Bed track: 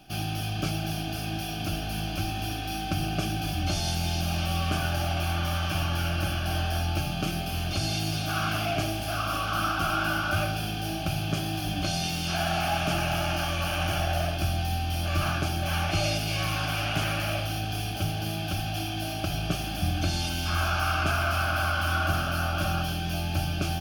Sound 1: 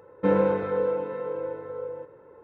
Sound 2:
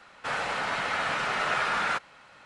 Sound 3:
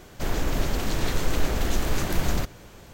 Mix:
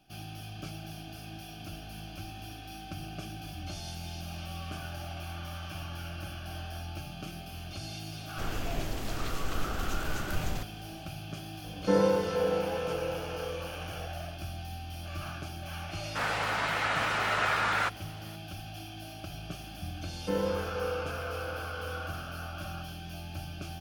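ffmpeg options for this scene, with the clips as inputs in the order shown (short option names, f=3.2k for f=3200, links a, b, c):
-filter_complex "[1:a]asplit=2[a][b];[0:a]volume=-12dB[c];[a]aecho=1:1:584:0.224[d];[3:a]atrim=end=2.93,asetpts=PTS-STARTPTS,volume=-9.5dB,afade=t=in:d=0.004:c=hsin,afade=t=out:st=2.926:d=0.004:c=hsin,adelay=360738S[e];[d]atrim=end=2.43,asetpts=PTS-STARTPTS,volume=-3dB,afade=t=in:d=0.004:c=hsin,afade=t=out:st=2.426:d=0.004:c=hsin,adelay=11640[f];[2:a]atrim=end=2.45,asetpts=PTS-STARTPTS,volume=-1dB,afade=t=in:d=0.004:c=hsin,afade=t=out:st=2.446:d=0.004:c=hsin,adelay=15910[g];[b]atrim=end=2.43,asetpts=PTS-STARTPTS,volume=-9dB,afade=t=in:d=0.004:c=hsin,afade=t=out:st=2.426:d=0.004:c=hsin,adelay=883764S[h];[c][e][f][g][h]amix=inputs=5:normalize=0"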